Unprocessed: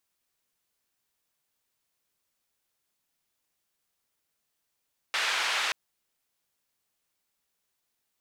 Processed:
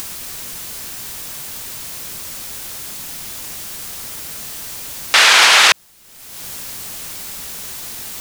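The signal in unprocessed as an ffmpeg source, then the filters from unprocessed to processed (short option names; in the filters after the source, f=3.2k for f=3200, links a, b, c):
-f lavfi -i "anoisesrc=c=white:d=0.58:r=44100:seed=1,highpass=f=1000,lowpass=f=3100,volume=-13.9dB"
-af "bass=f=250:g=6,treble=f=4k:g=3,acompressor=mode=upward:threshold=-41dB:ratio=2.5,alimiter=level_in=28dB:limit=-1dB:release=50:level=0:latency=1"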